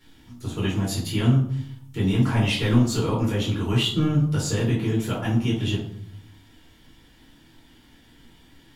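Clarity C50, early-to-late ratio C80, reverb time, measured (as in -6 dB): 5.0 dB, 9.5 dB, 0.60 s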